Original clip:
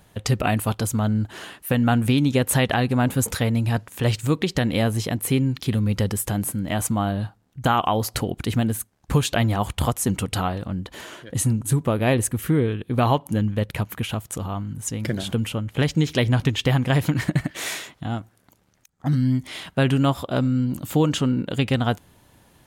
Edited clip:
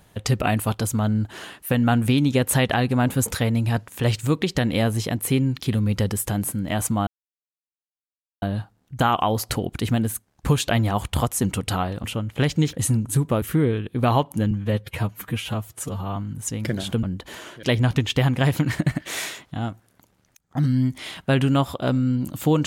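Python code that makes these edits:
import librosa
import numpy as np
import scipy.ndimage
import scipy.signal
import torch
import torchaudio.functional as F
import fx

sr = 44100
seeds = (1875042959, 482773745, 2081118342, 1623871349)

y = fx.edit(x, sr, fx.insert_silence(at_s=7.07, length_s=1.35),
    fx.swap(start_s=10.69, length_s=0.6, other_s=15.43, other_length_s=0.69),
    fx.cut(start_s=11.98, length_s=0.39),
    fx.stretch_span(start_s=13.46, length_s=1.1, factor=1.5), tone=tone)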